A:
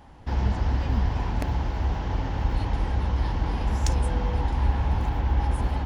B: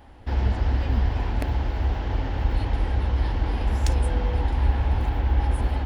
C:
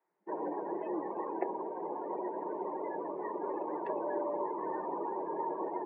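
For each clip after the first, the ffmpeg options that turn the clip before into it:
ffmpeg -i in.wav -af "equalizer=frequency=160:width_type=o:width=0.67:gain=-9,equalizer=frequency=1000:width_type=o:width=0.67:gain=-5,equalizer=frequency=6300:width_type=o:width=0.67:gain=-7,volume=2.5dB" out.wav
ffmpeg -i in.wav -af "afftdn=noise_reduction=29:noise_floor=-31,highpass=frequency=230:width_type=q:width=0.5412,highpass=frequency=230:width_type=q:width=1.307,lowpass=frequency=2200:width_type=q:width=0.5176,lowpass=frequency=2200:width_type=q:width=0.7071,lowpass=frequency=2200:width_type=q:width=1.932,afreqshift=95" out.wav

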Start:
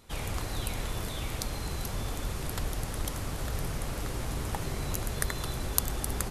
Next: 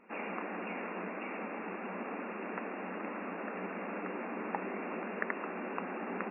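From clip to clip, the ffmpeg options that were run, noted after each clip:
ffmpeg -i in.wav -af "afftfilt=real='re*between(b*sr/4096,180,2800)':imag='im*between(b*sr/4096,180,2800)':win_size=4096:overlap=0.75,volume=1dB" out.wav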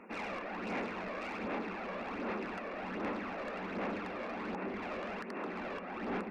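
ffmpeg -i in.wav -filter_complex "[0:a]acrossover=split=130[link_01][link_02];[link_02]alimiter=level_in=3dB:limit=-24dB:level=0:latency=1:release=295,volume=-3dB[link_03];[link_01][link_03]amix=inputs=2:normalize=0,asoftclip=type=tanh:threshold=-39dB,aphaser=in_gain=1:out_gain=1:delay=1.8:decay=0.43:speed=1.3:type=sinusoidal,volume=3dB" out.wav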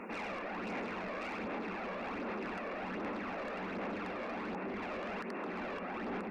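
ffmpeg -i in.wav -af "alimiter=level_in=18.5dB:limit=-24dB:level=0:latency=1:release=83,volume=-18.5dB,volume=8.5dB" out.wav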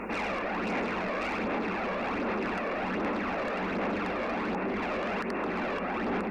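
ffmpeg -i in.wav -af "aeval=exprs='val(0)+0.000794*(sin(2*PI*50*n/s)+sin(2*PI*2*50*n/s)/2+sin(2*PI*3*50*n/s)/3+sin(2*PI*4*50*n/s)/4+sin(2*PI*5*50*n/s)/5)':channel_layout=same,volume=8.5dB" out.wav

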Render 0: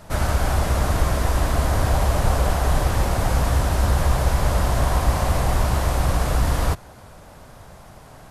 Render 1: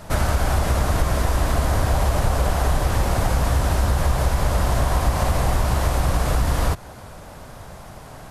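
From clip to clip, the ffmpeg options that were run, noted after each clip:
ffmpeg -i in.wav -af "acompressor=threshold=-21dB:ratio=3,volume=4.5dB" out.wav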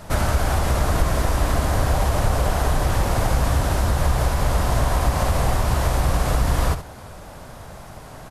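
ffmpeg -i in.wav -af "aecho=1:1:70:0.299" out.wav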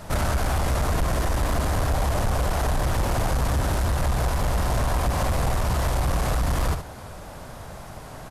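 ffmpeg -i in.wav -af "asoftclip=type=tanh:threshold=-17.5dB" out.wav

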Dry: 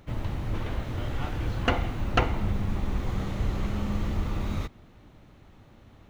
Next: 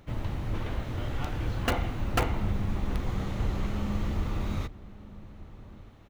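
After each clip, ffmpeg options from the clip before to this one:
ffmpeg -i in.wav -filter_complex "[0:a]asplit=2[link_01][link_02];[link_02]aeval=exprs='(mod(6.68*val(0)+1,2)-1)/6.68':channel_layout=same,volume=-7dB[link_03];[link_01][link_03]amix=inputs=2:normalize=0,asplit=2[link_04][link_05];[link_05]adelay=1224,volume=-17dB,highshelf=frequency=4000:gain=-27.6[link_06];[link_04][link_06]amix=inputs=2:normalize=0,volume=-4.5dB" out.wav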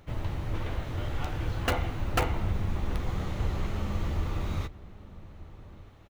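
ffmpeg -i in.wav -filter_complex "[0:a]equalizer=frequency=230:width=3:gain=-5.5,asplit=2[link_01][link_02];[link_02]adelay=12,volume=-13dB[link_03];[link_01][link_03]amix=inputs=2:normalize=0" out.wav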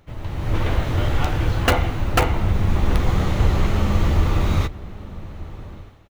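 ffmpeg -i in.wav -af "dynaudnorm=framelen=170:gausssize=5:maxgain=12.5dB" out.wav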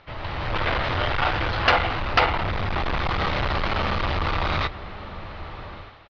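ffmpeg -i in.wav -af "asoftclip=type=tanh:threshold=-19dB,firequalizer=gain_entry='entry(230,0);entry(620,10);entry(1200,14);entry(4900,12);entry(7900,-26)':delay=0.05:min_phase=1,volume=-4dB" out.wav

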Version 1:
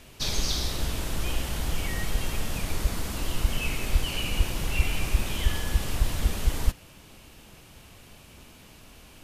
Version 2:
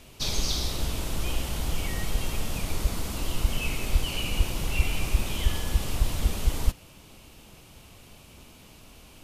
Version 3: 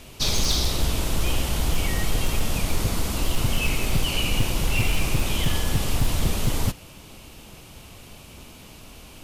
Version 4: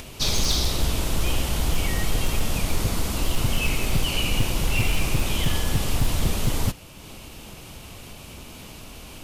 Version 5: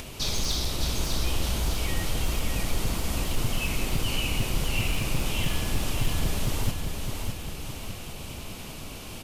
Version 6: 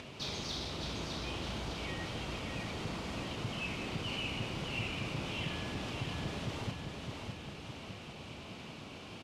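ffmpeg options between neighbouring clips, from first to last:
ffmpeg -i in.wav -af "equalizer=frequency=1700:width_type=o:width=0.48:gain=-5" out.wav
ffmpeg -i in.wav -af "aeval=exprs='0.106*(abs(mod(val(0)/0.106+3,4)-2)-1)':channel_layout=same,volume=6dB" out.wav
ffmpeg -i in.wav -af "acompressor=mode=upward:threshold=-34dB:ratio=2.5" out.wav
ffmpeg -i in.wav -af "alimiter=limit=-19dB:level=0:latency=1:release=449,aecho=1:1:610|1220|1830|2440|3050|3660:0.562|0.276|0.135|0.0662|0.0324|0.0159" out.wav
ffmpeg -i in.wav -filter_complex "[0:a]highpass=110,lowpass=4000,asplit=2[link_01][link_02];[link_02]asoftclip=type=tanh:threshold=-31.5dB,volume=-5.5dB[link_03];[link_01][link_03]amix=inputs=2:normalize=0,asplit=2[link_04][link_05];[link_05]adelay=36,volume=-11.5dB[link_06];[link_04][link_06]amix=inputs=2:normalize=0,volume=-9dB" out.wav

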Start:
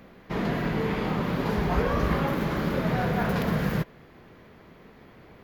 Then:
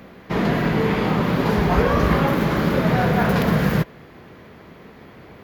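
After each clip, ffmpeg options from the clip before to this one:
ffmpeg -i in.wav -af "highpass=49,volume=7.5dB" out.wav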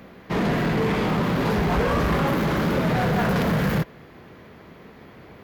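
ffmpeg -i in.wav -filter_complex "[0:a]asplit=2[link_01][link_02];[link_02]acrusher=bits=3:mix=0:aa=0.5,volume=-9.5dB[link_03];[link_01][link_03]amix=inputs=2:normalize=0,asoftclip=type=tanh:threshold=-15dB,volume=-2dB" out.wav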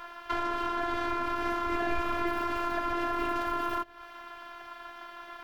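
ffmpeg -i in.wav -filter_complex "[0:a]aeval=exprs='val(0)*sin(2*PI*1200*n/s)':channel_layout=same,afftfilt=real='hypot(re,im)*cos(PI*b)':imag='0':win_size=512:overlap=0.75,acrossover=split=470[link_01][link_02];[link_02]acompressor=threshold=-36dB:ratio=10[link_03];[link_01][link_03]amix=inputs=2:normalize=0,volume=6dB" out.wav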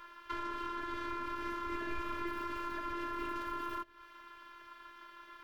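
ffmpeg -i in.wav -af "asuperstop=centerf=730:order=8:qfactor=4.7,volume=-8dB" out.wav

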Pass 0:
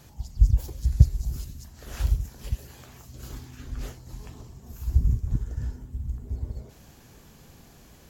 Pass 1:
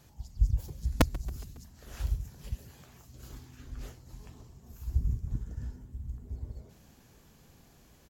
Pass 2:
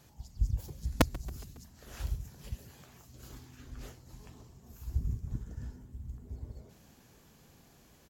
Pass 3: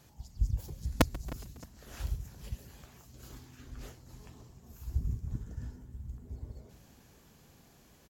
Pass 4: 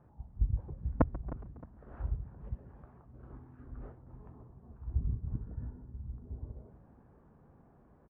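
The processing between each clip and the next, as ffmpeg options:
ffmpeg -i in.wav -filter_complex "[0:a]aeval=exprs='(mod(2*val(0)+1,2)-1)/2':channel_layout=same,asplit=5[link_01][link_02][link_03][link_04][link_05];[link_02]adelay=138,afreqshift=47,volume=-22dB[link_06];[link_03]adelay=276,afreqshift=94,volume=-26.6dB[link_07];[link_04]adelay=414,afreqshift=141,volume=-31.2dB[link_08];[link_05]adelay=552,afreqshift=188,volume=-35.7dB[link_09];[link_01][link_06][link_07][link_08][link_09]amix=inputs=5:normalize=0,volume=-7.5dB" out.wav
ffmpeg -i in.wav -af "lowshelf=frequency=72:gain=-7" out.wav
ffmpeg -i in.wav -filter_complex "[0:a]asplit=2[link_01][link_02];[link_02]adelay=310,lowpass=frequency=3500:poles=1,volume=-18dB,asplit=2[link_03][link_04];[link_04]adelay=310,lowpass=frequency=3500:poles=1,volume=0.41,asplit=2[link_05][link_06];[link_06]adelay=310,lowpass=frequency=3500:poles=1,volume=0.41[link_07];[link_01][link_03][link_05][link_07]amix=inputs=4:normalize=0" out.wav
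ffmpeg -i in.wav -filter_complex "[0:a]asplit=2[link_01][link_02];[link_02]volume=22.5dB,asoftclip=hard,volume=-22.5dB,volume=-9dB[link_03];[link_01][link_03]amix=inputs=2:normalize=0,lowpass=frequency=1300:width=0.5412,lowpass=frequency=1300:width=1.3066,volume=-2.5dB" out.wav

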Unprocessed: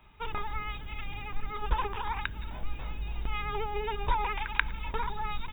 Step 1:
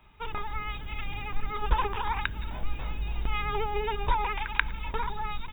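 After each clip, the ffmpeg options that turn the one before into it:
ffmpeg -i in.wav -af "dynaudnorm=framelen=470:gausssize=3:maxgain=3.5dB" out.wav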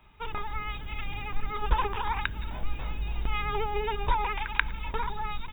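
ffmpeg -i in.wav -af anull out.wav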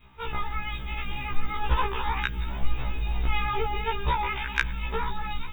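ffmpeg -i in.wav -af "adynamicequalizer=threshold=0.00562:dfrequency=830:dqfactor=1.3:tfrequency=830:tqfactor=1.3:attack=5:release=100:ratio=0.375:range=2.5:mode=cutabove:tftype=bell,acontrast=57,afftfilt=real='re*1.73*eq(mod(b,3),0)':imag='im*1.73*eq(mod(b,3),0)':win_size=2048:overlap=0.75" out.wav

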